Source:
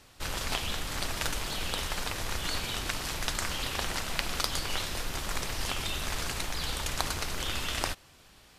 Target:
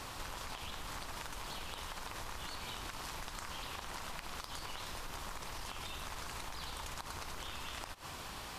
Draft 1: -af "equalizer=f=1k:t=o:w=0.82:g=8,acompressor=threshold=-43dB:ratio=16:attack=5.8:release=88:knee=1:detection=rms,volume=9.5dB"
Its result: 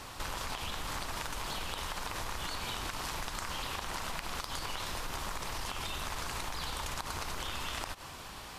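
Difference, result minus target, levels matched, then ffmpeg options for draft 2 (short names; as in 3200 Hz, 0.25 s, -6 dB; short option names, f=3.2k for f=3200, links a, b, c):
compressor: peak gain reduction -6 dB
-af "equalizer=f=1k:t=o:w=0.82:g=8,acompressor=threshold=-49.5dB:ratio=16:attack=5.8:release=88:knee=1:detection=rms,volume=9.5dB"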